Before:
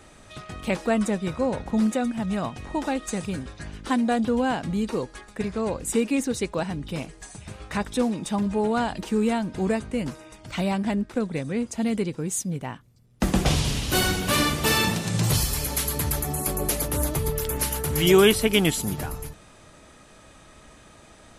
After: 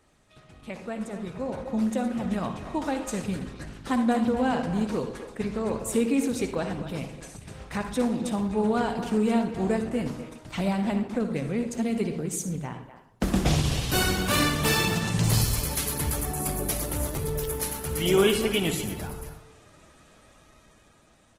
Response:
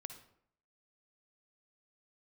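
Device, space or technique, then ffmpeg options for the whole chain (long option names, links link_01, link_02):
speakerphone in a meeting room: -filter_complex "[1:a]atrim=start_sample=2205[link_01];[0:a][link_01]afir=irnorm=-1:irlink=0,asplit=2[link_02][link_03];[link_03]adelay=250,highpass=300,lowpass=3400,asoftclip=type=hard:threshold=-17dB,volume=-11dB[link_04];[link_02][link_04]amix=inputs=2:normalize=0,dynaudnorm=framelen=300:gausssize=11:maxgain=12dB,volume=-8dB" -ar 48000 -c:a libopus -b:a 16k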